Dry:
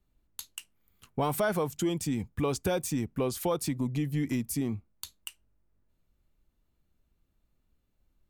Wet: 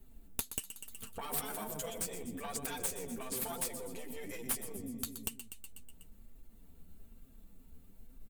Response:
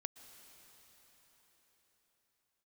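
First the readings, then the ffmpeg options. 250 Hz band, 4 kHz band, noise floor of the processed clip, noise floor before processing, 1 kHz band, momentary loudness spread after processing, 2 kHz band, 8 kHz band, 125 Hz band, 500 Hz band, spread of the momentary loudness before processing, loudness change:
−14.0 dB, −4.5 dB, −58 dBFS, −75 dBFS, −8.5 dB, 11 LU, −7.0 dB, +0.5 dB, −17.5 dB, −12.5 dB, 16 LU, −8.5 dB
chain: -filter_complex "[0:a]acrossover=split=540|6200[link_01][link_02][link_03];[link_01]acontrast=61[link_04];[link_04][link_02][link_03]amix=inputs=3:normalize=0,aeval=exprs='0.251*(cos(1*acos(clip(val(0)/0.251,-1,1)))-cos(1*PI/2))+0.0447*(cos(2*acos(clip(val(0)/0.251,-1,1)))-cos(2*PI/2))':channel_layout=same,aecho=1:1:123|246|369|492|615|738:0.251|0.146|0.0845|0.049|0.0284|0.0165,afftfilt=real='re*lt(hypot(re,im),0.178)':imag='im*lt(hypot(re,im),0.178)':win_size=1024:overlap=0.75,flanger=delay=7.4:depth=5.1:regen=17:speed=1.1:shape=triangular,bandreject=frequency=1100:width=27,acompressor=threshold=-59dB:ratio=2.5,aexciter=amount=1.9:drive=8:freq=7600,aecho=1:1:4.4:0.55,aeval=exprs='0.0708*(cos(1*acos(clip(val(0)/0.0708,-1,1)))-cos(1*PI/2))+0.0126*(cos(5*acos(clip(val(0)/0.0708,-1,1)))-cos(5*PI/2))+0.02*(cos(8*acos(clip(val(0)/0.0708,-1,1)))-cos(8*PI/2))':channel_layout=same,volume=6.5dB"

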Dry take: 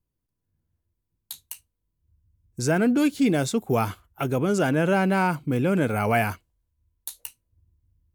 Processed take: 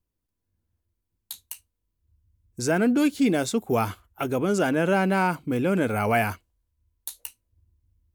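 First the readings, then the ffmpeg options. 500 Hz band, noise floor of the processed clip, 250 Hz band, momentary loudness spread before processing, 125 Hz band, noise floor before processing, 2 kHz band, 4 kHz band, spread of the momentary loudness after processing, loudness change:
0.0 dB, −81 dBFS, −0.5 dB, 20 LU, −3.5 dB, −81 dBFS, 0.0 dB, 0.0 dB, 19 LU, −0.5 dB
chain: -af "equalizer=frequency=140:width=4.4:gain=-10"

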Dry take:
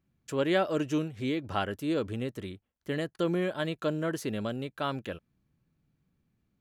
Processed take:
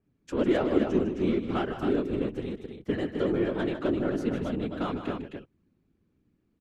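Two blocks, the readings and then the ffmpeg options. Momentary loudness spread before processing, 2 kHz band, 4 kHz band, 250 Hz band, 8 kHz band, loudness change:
11 LU, −2.0 dB, −4.0 dB, +4.5 dB, can't be measured, +2.5 dB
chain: -filter_complex "[0:a]acrossover=split=420|3300[link_01][link_02][link_03];[link_03]adynamicsmooth=sensitivity=4.5:basefreq=7000[link_04];[link_01][link_02][link_04]amix=inputs=3:normalize=0,equalizer=frequency=300:width_type=o:width=0.87:gain=9.5,asplit=2[link_05][link_06];[link_06]acompressor=threshold=-29dB:ratio=6,volume=-2dB[link_07];[link_05][link_07]amix=inputs=2:normalize=0,aeval=exprs='0.316*(cos(1*acos(clip(val(0)/0.316,-1,1)))-cos(1*PI/2))+0.01*(cos(8*acos(clip(val(0)/0.316,-1,1)))-cos(8*PI/2))':channel_layout=same,afftfilt=real='hypot(re,im)*cos(2*PI*random(0))':imag='hypot(re,im)*sin(2*PI*random(1))':win_size=512:overlap=0.75,aecho=1:1:151.6|262.4:0.316|0.501,adynamicequalizer=threshold=0.00631:dfrequency=2800:dqfactor=0.7:tfrequency=2800:tqfactor=0.7:attack=5:release=100:ratio=0.375:range=2:mode=cutabove:tftype=highshelf"

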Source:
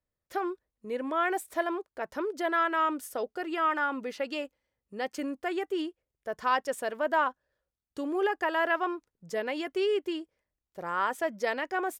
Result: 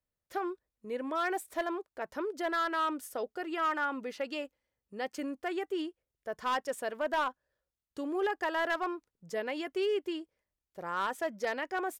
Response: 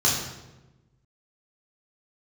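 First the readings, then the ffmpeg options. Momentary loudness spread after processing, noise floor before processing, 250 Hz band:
10 LU, below −85 dBFS, −3.0 dB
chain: -af "volume=22dB,asoftclip=hard,volume=-22dB,volume=-3dB"

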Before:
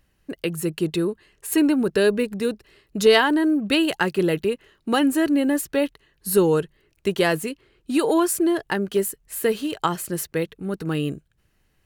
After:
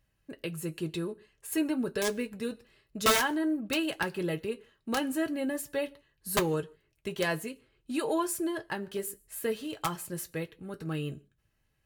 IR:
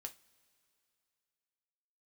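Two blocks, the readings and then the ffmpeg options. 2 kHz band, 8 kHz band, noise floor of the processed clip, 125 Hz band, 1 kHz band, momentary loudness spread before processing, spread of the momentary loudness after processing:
−8.0 dB, −6.5 dB, −75 dBFS, −8.5 dB, −7.5 dB, 11 LU, 12 LU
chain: -filter_complex "[0:a]aeval=exprs='(mod(2.82*val(0)+1,2)-1)/2.82':channel_layout=same[link_01];[1:a]atrim=start_sample=2205,afade=type=out:start_time=0.37:duration=0.01,atrim=end_sample=16758,asetrate=83790,aresample=44100[link_02];[link_01][link_02]afir=irnorm=-1:irlink=0,volume=1dB"

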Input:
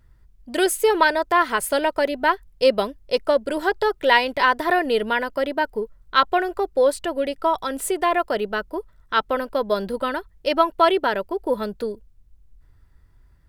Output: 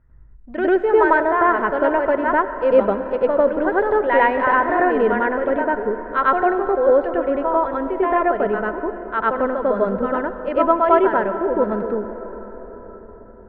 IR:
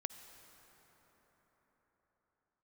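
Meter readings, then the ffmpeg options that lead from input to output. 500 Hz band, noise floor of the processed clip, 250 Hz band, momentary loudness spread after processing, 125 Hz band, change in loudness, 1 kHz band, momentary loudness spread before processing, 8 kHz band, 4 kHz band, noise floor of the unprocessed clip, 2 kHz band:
+4.0 dB, −42 dBFS, +5.5 dB, 9 LU, can't be measured, +3.0 dB, +3.0 dB, 9 LU, below −40 dB, below −15 dB, −56 dBFS, +1.0 dB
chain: -filter_complex "[0:a]lowpass=frequency=1900:width=0.5412,lowpass=frequency=1900:width=1.3066,asplit=2[link_01][link_02];[1:a]atrim=start_sample=2205,lowshelf=frequency=500:gain=6,adelay=98[link_03];[link_02][link_03]afir=irnorm=-1:irlink=0,volume=4.5dB[link_04];[link_01][link_04]amix=inputs=2:normalize=0,volume=-2.5dB"

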